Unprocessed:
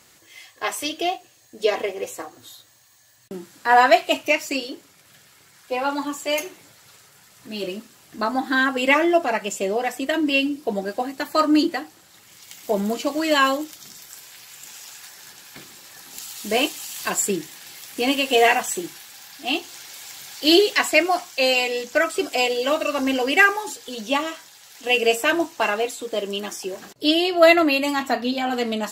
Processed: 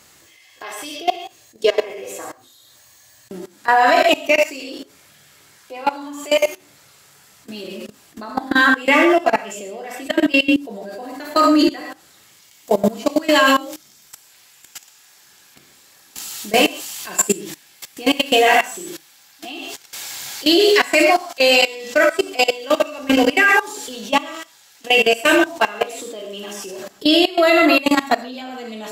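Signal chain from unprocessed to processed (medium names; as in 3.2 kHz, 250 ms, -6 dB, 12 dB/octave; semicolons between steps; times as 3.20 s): gated-style reverb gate 160 ms flat, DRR 1.5 dB; level held to a coarse grid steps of 19 dB; trim +6.5 dB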